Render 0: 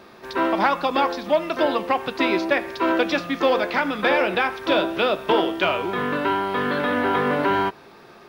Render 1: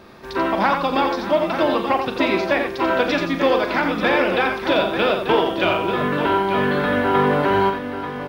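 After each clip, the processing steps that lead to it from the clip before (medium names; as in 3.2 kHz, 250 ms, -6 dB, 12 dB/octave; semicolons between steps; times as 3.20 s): bass shelf 130 Hz +11.5 dB; on a send: multi-tap echo 41/87/586/889 ms -10/-6.5/-16.5/-9 dB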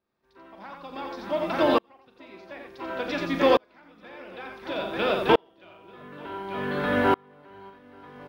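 sawtooth tremolo in dB swelling 0.56 Hz, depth 39 dB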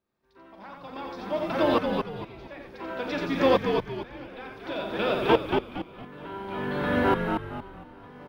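bass shelf 250 Hz +4 dB; on a send: frequency-shifting echo 231 ms, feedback 35%, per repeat -71 Hz, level -5 dB; on the sum: trim -2.5 dB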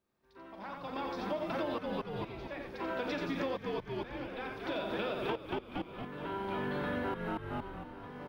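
compression 16:1, threshold -32 dBFS, peak gain reduction 18.5 dB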